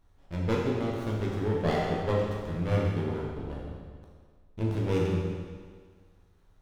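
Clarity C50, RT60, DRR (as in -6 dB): 0.0 dB, 1.7 s, -3.5 dB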